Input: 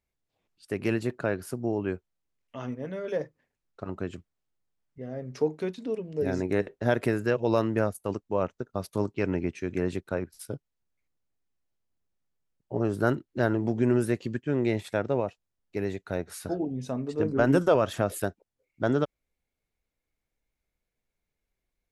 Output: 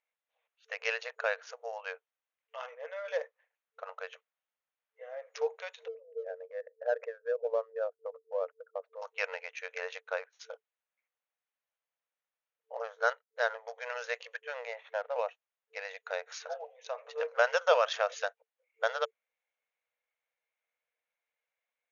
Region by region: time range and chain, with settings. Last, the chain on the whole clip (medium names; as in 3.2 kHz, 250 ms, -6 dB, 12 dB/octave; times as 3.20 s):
5.88–9.02 s: resonances exaggerated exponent 2 + low-pass 1.9 kHz 24 dB/octave + dynamic bell 940 Hz, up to -4 dB, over -35 dBFS, Q 0.79
12.82–13.86 s: band-stop 2.7 kHz, Q 5.7 + upward expansion, over -41 dBFS
14.65–15.16 s: CVSD coder 64 kbps + steep high-pass 480 Hz + tape spacing loss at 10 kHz 33 dB
whole clip: local Wiener filter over 9 samples; tilt shelf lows -6.5 dB, about 1.1 kHz; FFT band-pass 450–6800 Hz; trim +1 dB